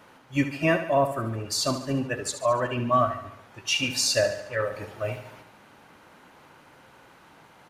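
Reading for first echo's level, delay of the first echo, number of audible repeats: -10.5 dB, 72 ms, 5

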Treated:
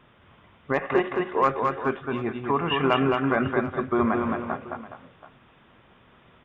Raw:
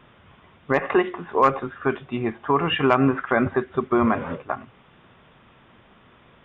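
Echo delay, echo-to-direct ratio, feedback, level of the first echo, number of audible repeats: 217 ms, -3.0 dB, no regular repeats, -4.0 dB, 3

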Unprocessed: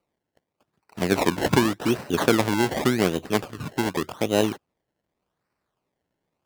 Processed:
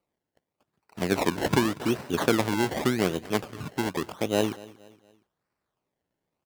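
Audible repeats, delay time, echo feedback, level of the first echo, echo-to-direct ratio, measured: 2, 234 ms, 41%, -20.5 dB, -19.5 dB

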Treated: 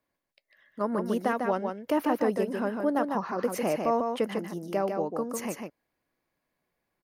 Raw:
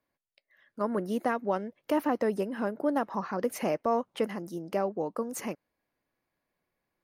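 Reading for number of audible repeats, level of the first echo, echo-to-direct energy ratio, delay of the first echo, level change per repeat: 1, -5.0 dB, -5.0 dB, 149 ms, no regular repeats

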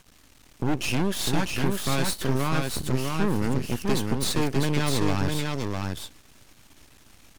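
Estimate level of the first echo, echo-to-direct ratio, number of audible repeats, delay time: -3.5 dB, -3.5 dB, 1, 651 ms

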